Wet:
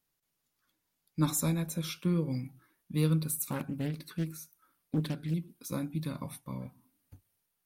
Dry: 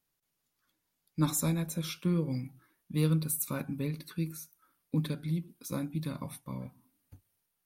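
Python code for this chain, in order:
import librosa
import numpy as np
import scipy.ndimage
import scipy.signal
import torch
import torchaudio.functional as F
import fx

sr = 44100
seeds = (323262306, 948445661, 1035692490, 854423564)

y = fx.doppler_dist(x, sr, depth_ms=0.56, at=(3.29, 5.34))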